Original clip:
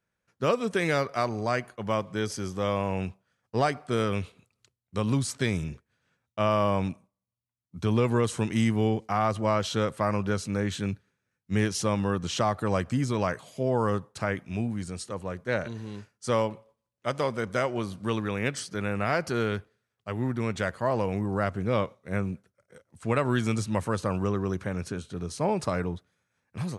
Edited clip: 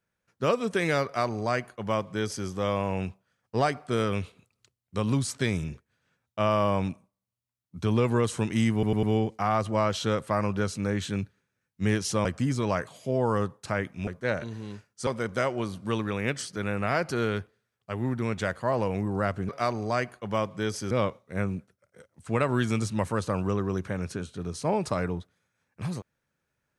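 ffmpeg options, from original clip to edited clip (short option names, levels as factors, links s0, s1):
-filter_complex "[0:a]asplit=9[s0][s1][s2][s3][s4][s5][s6][s7][s8];[s0]atrim=end=8.832[s9];[s1]atrim=start=8.728:end=8.832[s10];[s2]atrim=start=8.728:end=8.832[s11];[s3]atrim=start=8.728:end=11.952[s12];[s4]atrim=start=12.768:end=14.592[s13];[s5]atrim=start=15.308:end=16.312[s14];[s6]atrim=start=17.248:end=21.672[s15];[s7]atrim=start=1.048:end=2.472[s16];[s8]atrim=start=21.668[s17];[s9][s10]acrossfade=d=0.004:c1=hsin:c2=hsin[s18];[s18][s11]acrossfade=d=0.004:c1=hsin:c2=hsin[s19];[s19][s12]acrossfade=d=0.004:c1=hsin:c2=hsin[s20];[s20][s13]acrossfade=d=0.004:c1=hsin:c2=hsin[s21];[s21][s14]acrossfade=d=0.004:c1=hsin:c2=hsin[s22];[s22][s15]acrossfade=d=0.004:c1=hsin:c2=hsin[s23];[s23][s16]acrossfade=d=0.004:c1=hsin:c2=hsin[s24];[s24][s17]acrossfade=d=0.004:c1=hsin:c2=hsin"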